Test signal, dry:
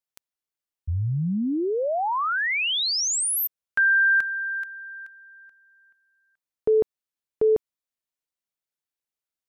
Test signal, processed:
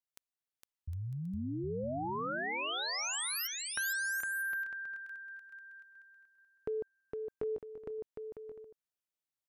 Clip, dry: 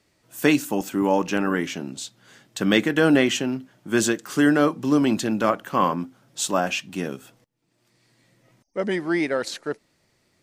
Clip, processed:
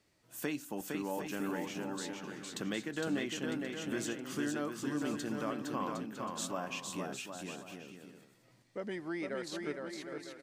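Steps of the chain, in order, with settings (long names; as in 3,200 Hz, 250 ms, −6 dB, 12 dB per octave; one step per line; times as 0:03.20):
downward compressor 2 to 1, threshold −36 dBFS
bouncing-ball delay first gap 460 ms, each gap 0.65×, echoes 5
level −7 dB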